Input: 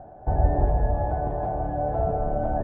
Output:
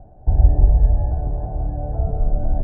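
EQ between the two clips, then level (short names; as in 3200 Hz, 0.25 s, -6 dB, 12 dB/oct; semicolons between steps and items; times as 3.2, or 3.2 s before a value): tilt -4.5 dB/oct; -10.0 dB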